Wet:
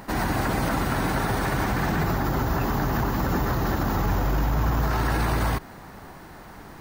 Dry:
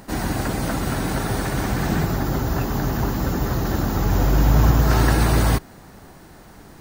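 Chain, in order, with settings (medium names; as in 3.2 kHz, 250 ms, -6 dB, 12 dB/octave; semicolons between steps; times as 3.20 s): graphic EQ 1/2/8 kHz +5/+3/-4 dB; peak limiter -15.5 dBFS, peak gain reduction 11 dB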